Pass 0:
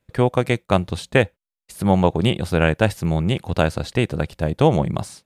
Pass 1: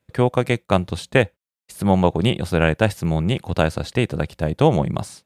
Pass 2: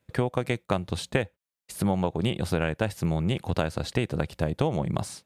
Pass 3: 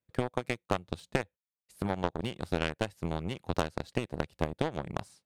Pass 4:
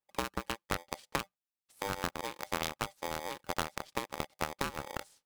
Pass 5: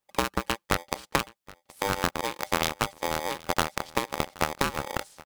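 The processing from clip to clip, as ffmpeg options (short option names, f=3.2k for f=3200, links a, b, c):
-af "highpass=55"
-af "acompressor=threshold=-22dB:ratio=6"
-af "aeval=exprs='0.376*(cos(1*acos(clip(val(0)/0.376,-1,1)))-cos(1*PI/2))+0.133*(cos(2*acos(clip(val(0)/0.376,-1,1)))-cos(2*PI/2))+0.0188*(cos(6*acos(clip(val(0)/0.376,-1,1)))-cos(6*PI/2))+0.0422*(cos(7*acos(clip(val(0)/0.376,-1,1)))-cos(7*PI/2))+0.0211*(cos(8*acos(clip(val(0)/0.376,-1,1)))-cos(8*PI/2))':c=same,volume=-5dB"
-af "aeval=exprs='val(0)*sgn(sin(2*PI*690*n/s))':c=same,volume=-4.5dB"
-af "aecho=1:1:773:0.0794,volume=8.5dB"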